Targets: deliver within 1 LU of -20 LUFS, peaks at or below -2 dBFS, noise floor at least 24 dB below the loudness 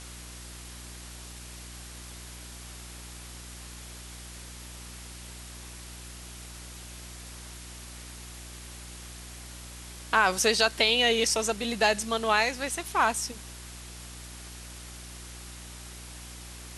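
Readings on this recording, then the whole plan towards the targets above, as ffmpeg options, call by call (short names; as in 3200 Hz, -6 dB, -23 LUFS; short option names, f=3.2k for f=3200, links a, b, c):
hum 60 Hz; harmonics up to 360 Hz; hum level -44 dBFS; noise floor -44 dBFS; noise floor target -49 dBFS; loudness -25.0 LUFS; peak -8.5 dBFS; loudness target -20.0 LUFS
-> -af "bandreject=f=60:t=h:w=4,bandreject=f=120:t=h:w=4,bandreject=f=180:t=h:w=4,bandreject=f=240:t=h:w=4,bandreject=f=300:t=h:w=4,bandreject=f=360:t=h:w=4"
-af "afftdn=nr=6:nf=-44"
-af "volume=5dB"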